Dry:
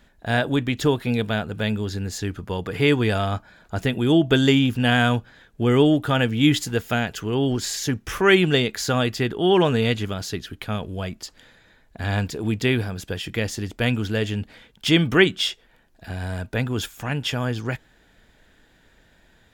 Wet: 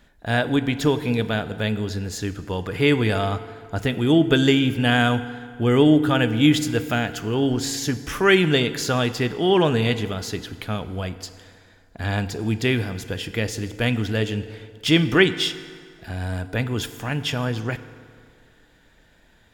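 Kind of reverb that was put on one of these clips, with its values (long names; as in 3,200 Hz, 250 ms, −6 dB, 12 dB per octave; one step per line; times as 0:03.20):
feedback delay network reverb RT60 2.1 s, low-frequency decay 0.9×, high-frequency decay 0.7×, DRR 11.5 dB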